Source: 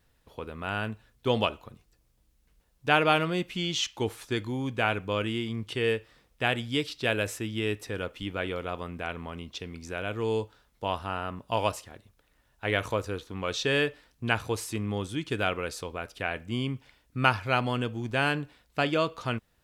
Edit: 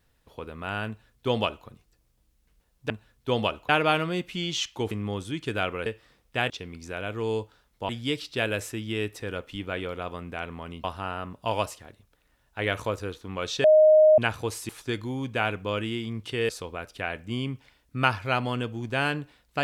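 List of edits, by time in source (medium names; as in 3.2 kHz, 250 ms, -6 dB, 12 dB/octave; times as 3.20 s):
0.88–1.67 s: copy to 2.90 s
4.12–5.92 s: swap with 14.75–15.70 s
9.51–10.90 s: move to 6.56 s
13.70–14.24 s: bleep 620 Hz -12.5 dBFS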